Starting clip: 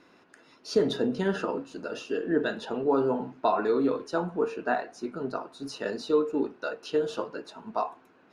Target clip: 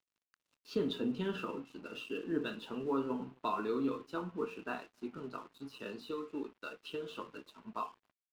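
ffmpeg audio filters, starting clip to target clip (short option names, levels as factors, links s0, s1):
-filter_complex "[0:a]asettb=1/sr,asplit=3[s0][s1][s2];[s0]atrim=end=5.174[s3];[s1]atrim=start=5.17:end=7.36,asetpts=PTS-STARTPTS,afade=t=in:d=0.004:c=qsin,afade=t=out:st=2.186:d=0.004:c=qsin,acrossover=split=340|4100[s4][s5][s6];[s4]acompressor=threshold=0.0126:ratio=4[s7];[s5]acompressor=threshold=0.0447:ratio=4[s8];[s6]acompressor=threshold=0.00398:ratio=4[s9];[s7][s8][s9]amix=inputs=3:normalize=0[s10];[s2]atrim=start=7.356[s11];[s3][s10]acrossfade=d=0.004:c1=hsin:c2=qsin[s12];[s12][s11]acrossfade=d=0.004:c1=qsin:c2=hsin,firequalizer=gain_entry='entry(240,0);entry(710,-12);entry(1100,2);entry(1800,-9);entry(2700,6);entry(5400,-10)':delay=0.05:min_phase=1,asplit=2[s13][s14];[s14]adelay=268.2,volume=0.0398,highshelf=f=4000:g=-6.04[s15];[s13][s15]amix=inputs=2:normalize=0,flanger=delay=8.6:depth=6:regen=-64:speed=0.25:shape=sinusoidal,aeval=exprs='sgn(val(0))*max(abs(val(0))-0.00141,0)':c=same,volume=0.841"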